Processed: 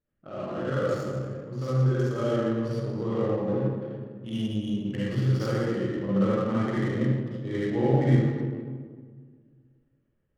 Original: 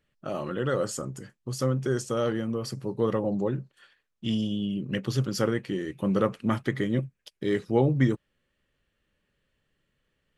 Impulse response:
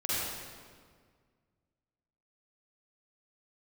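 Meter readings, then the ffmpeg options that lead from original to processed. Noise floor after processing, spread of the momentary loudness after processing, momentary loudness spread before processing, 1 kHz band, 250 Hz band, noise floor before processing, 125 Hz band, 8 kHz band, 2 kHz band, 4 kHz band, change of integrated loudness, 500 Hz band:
-73 dBFS, 11 LU, 10 LU, 0.0 dB, +1.0 dB, -78 dBFS, +4.0 dB, under -10 dB, -1.0 dB, -4.0 dB, +1.0 dB, +0.5 dB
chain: -filter_complex "[0:a]aresample=16000,aresample=44100[s0];[1:a]atrim=start_sample=2205[s1];[s0][s1]afir=irnorm=-1:irlink=0,adynamicsmooth=sensitivity=4:basefreq=1300,volume=0.398"

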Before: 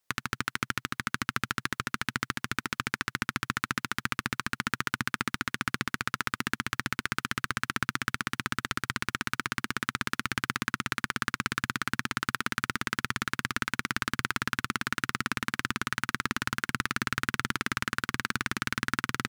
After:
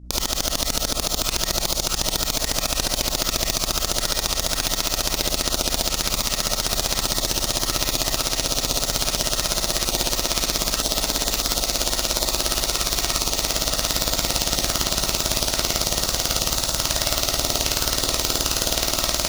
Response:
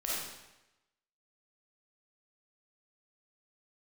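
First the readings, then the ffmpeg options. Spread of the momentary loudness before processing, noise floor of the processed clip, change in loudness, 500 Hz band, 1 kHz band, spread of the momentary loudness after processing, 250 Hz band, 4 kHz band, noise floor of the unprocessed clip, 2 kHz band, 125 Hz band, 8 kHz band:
2 LU, -30 dBFS, +10.5 dB, +17.5 dB, +4.0 dB, 1 LU, +4.5 dB, +15.5 dB, -80 dBFS, -1.5 dB, +7.0 dB, +19.5 dB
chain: -filter_complex "[0:a]lowpass=7300,aexciter=amount=13:drive=7.5:freq=2900,asplit=2[s0][s1];[s1]asoftclip=type=tanh:threshold=0.355,volume=0.422[s2];[s0][s2]amix=inputs=2:normalize=0,aeval=exprs='2.82*(cos(1*acos(clip(val(0)/2.82,-1,1)))-cos(1*PI/2))+0.447*(cos(7*acos(clip(val(0)/2.82,-1,1)))-cos(7*PI/2))+0.794*(cos(8*acos(clip(val(0)/2.82,-1,1)))-cos(8*PI/2))':c=same,aeval=exprs='val(0)+0.0282*(sin(2*PI*60*n/s)+sin(2*PI*2*60*n/s)/2+sin(2*PI*3*60*n/s)/3+sin(2*PI*4*60*n/s)/4+sin(2*PI*5*60*n/s)/5)':c=same[s3];[1:a]atrim=start_sample=2205,atrim=end_sample=3528[s4];[s3][s4]afir=irnorm=-1:irlink=0,volume=0.335"

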